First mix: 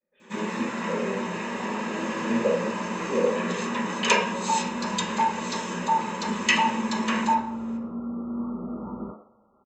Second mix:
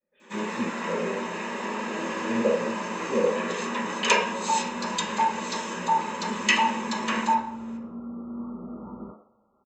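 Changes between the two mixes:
first sound: add HPF 240 Hz 12 dB/oct; second sound -4.5 dB

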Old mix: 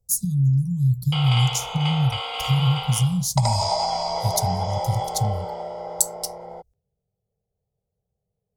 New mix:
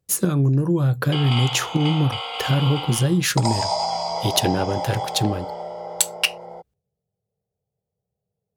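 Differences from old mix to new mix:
speech: remove inverse Chebyshev band-stop 320–2800 Hz, stop band 40 dB; master: add HPF 90 Hz

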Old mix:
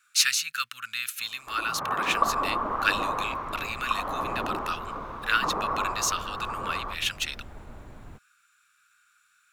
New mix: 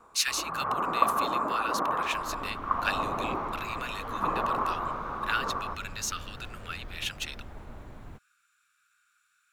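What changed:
speech -5.5 dB; first sound: entry -1.20 s

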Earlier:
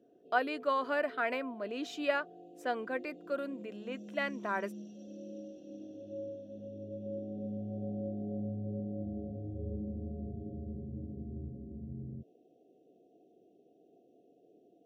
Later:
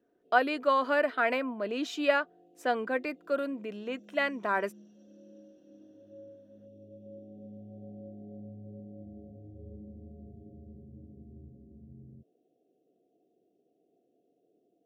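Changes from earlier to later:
speech +5.5 dB; background -8.0 dB

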